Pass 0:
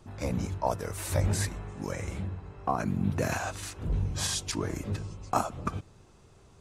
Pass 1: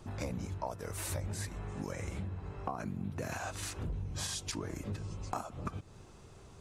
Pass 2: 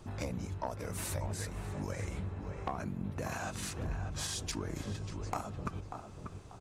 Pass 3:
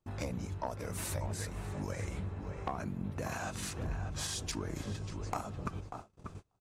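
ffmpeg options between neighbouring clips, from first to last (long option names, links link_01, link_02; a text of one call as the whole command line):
ffmpeg -i in.wav -af "acompressor=threshold=-38dB:ratio=6,volume=2.5dB" out.wav
ffmpeg -i in.wav -filter_complex "[0:a]asplit=2[link_01][link_02];[link_02]adelay=590,lowpass=frequency=2100:poles=1,volume=-6.5dB,asplit=2[link_03][link_04];[link_04]adelay=590,lowpass=frequency=2100:poles=1,volume=0.31,asplit=2[link_05][link_06];[link_06]adelay=590,lowpass=frequency=2100:poles=1,volume=0.31,asplit=2[link_07][link_08];[link_08]adelay=590,lowpass=frequency=2100:poles=1,volume=0.31[link_09];[link_01][link_03][link_05][link_07][link_09]amix=inputs=5:normalize=0,aeval=exprs='0.0944*(cos(1*acos(clip(val(0)/0.0944,-1,1)))-cos(1*PI/2))+0.015*(cos(2*acos(clip(val(0)/0.0944,-1,1)))-cos(2*PI/2))+0.0266*(cos(4*acos(clip(val(0)/0.0944,-1,1)))-cos(4*PI/2))+0.0106*(cos(6*acos(clip(val(0)/0.0944,-1,1)))-cos(6*PI/2))':channel_layout=same" out.wav
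ffmpeg -i in.wav -af "agate=range=-29dB:threshold=-45dB:ratio=16:detection=peak" out.wav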